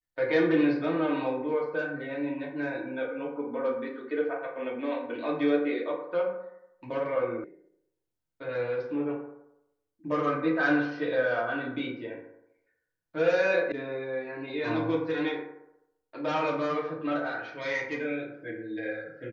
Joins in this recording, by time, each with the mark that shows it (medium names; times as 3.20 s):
7.44 s: sound stops dead
13.72 s: sound stops dead